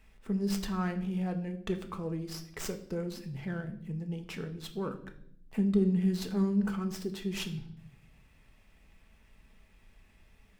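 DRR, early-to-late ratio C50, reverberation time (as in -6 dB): 5.5 dB, 12.5 dB, 0.70 s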